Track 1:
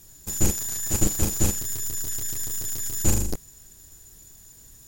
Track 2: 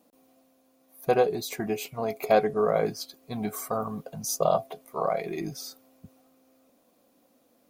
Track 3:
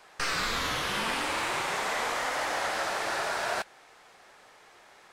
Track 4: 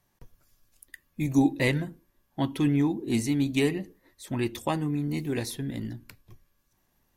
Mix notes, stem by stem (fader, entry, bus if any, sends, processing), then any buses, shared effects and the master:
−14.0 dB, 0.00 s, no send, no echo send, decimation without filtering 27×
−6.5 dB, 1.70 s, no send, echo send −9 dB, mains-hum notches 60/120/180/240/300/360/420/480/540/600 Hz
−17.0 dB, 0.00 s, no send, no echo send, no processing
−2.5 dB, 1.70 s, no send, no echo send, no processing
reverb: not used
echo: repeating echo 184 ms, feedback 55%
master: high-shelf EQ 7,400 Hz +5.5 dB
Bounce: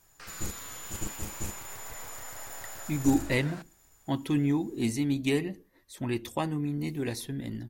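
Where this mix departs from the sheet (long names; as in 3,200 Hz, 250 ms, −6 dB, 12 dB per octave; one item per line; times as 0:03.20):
stem 1: missing decimation without filtering 27×
stem 2: muted
master: missing high-shelf EQ 7,400 Hz +5.5 dB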